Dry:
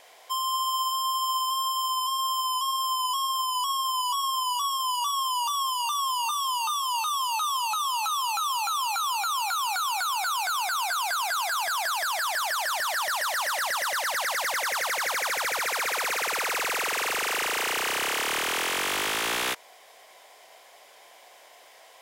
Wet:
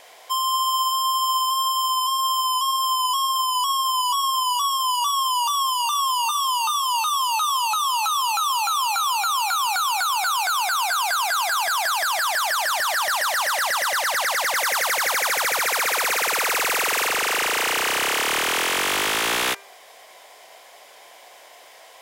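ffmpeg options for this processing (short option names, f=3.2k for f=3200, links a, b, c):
-filter_complex "[0:a]asettb=1/sr,asplit=3[a][b][c];[a]atrim=end=14.564[d];[b]atrim=start=14.56:end=17.07,asetpts=PTS-STARTPTS,afade=t=in:d=0.004:c=qsin,afade=t=out:st=2.506:d=0.004:c=qsin,highshelf=f=10k:g=5[e];[c]atrim=start=17.066[f];[d][e]acrossfade=d=0.004:c1=hsin:c2=qsin[g];[g][f]acrossfade=d=0.004:c1=qsin:c2=hsin,bandreject=f=397.1:t=h:w=4,bandreject=f=794.2:t=h:w=4,bandreject=f=1.1913k:t=h:w=4,bandreject=f=1.5884k:t=h:w=4,bandreject=f=1.9855k:t=h:w=4,bandreject=f=2.3826k:t=h:w=4,bandreject=f=2.7797k:t=h:w=4,bandreject=f=3.1768k:t=h:w=4,acontrast=36"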